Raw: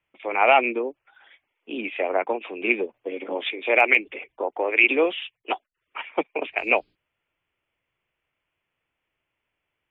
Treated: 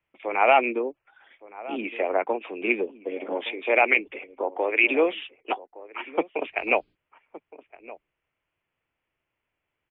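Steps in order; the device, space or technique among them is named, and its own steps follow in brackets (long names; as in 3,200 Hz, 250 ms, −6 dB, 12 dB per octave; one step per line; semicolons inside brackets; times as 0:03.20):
shout across a valley (high-frequency loss of the air 220 metres; slap from a distant wall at 200 metres, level −17 dB)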